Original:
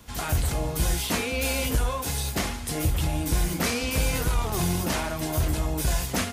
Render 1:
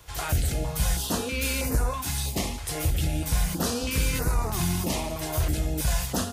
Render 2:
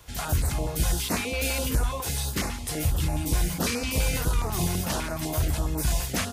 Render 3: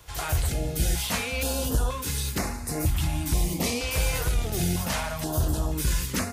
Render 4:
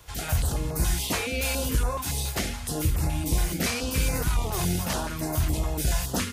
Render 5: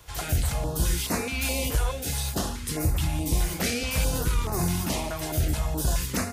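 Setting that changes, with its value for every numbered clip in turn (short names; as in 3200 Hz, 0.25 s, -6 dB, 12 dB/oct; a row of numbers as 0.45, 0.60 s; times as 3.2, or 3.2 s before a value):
stepped notch, rate: 3.1, 12, 2.1, 7.1, 4.7 Hz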